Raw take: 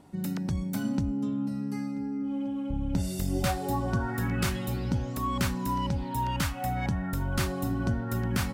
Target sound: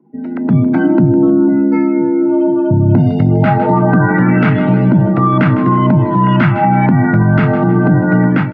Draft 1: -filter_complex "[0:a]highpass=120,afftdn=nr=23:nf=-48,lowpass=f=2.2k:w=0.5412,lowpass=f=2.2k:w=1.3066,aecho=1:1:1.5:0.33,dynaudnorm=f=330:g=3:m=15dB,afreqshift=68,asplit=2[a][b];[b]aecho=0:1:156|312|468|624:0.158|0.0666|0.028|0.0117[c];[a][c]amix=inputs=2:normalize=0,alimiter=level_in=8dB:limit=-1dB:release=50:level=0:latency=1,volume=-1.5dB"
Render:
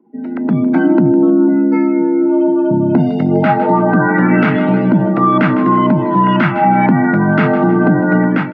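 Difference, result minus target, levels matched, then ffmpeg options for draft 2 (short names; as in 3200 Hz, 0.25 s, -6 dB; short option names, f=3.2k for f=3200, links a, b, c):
125 Hz band -5.5 dB
-filter_complex "[0:a]afftdn=nr=23:nf=-48,lowpass=f=2.2k:w=0.5412,lowpass=f=2.2k:w=1.3066,aecho=1:1:1.5:0.33,dynaudnorm=f=330:g=3:m=15dB,afreqshift=68,asplit=2[a][b];[b]aecho=0:1:156|312|468|624:0.158|0.0666|0.028|0.0117[c];[a][c]amix=inputs=2:normalize=0,alimiter=level_in=8dB:limit=-1dB:release=50:level=0:latency=1,volume=-1.5dB"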